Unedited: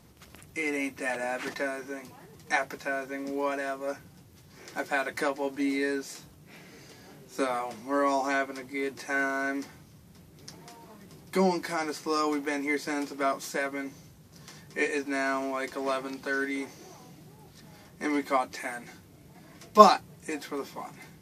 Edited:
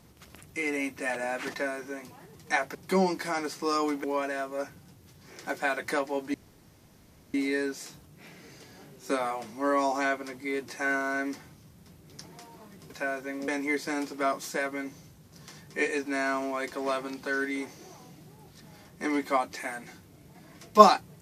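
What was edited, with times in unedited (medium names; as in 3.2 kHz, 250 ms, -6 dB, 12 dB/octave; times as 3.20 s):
2.75–3.33 s: swap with 11.19–12.48 s
5.63 s: insert room tone 1.00 s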